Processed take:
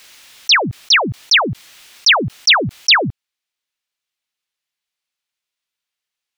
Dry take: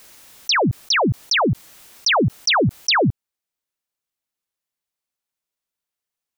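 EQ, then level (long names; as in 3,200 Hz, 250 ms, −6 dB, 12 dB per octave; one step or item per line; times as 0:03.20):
parametric band 3,000 Hz +13 dB 2.7 octaves
−4.0 dB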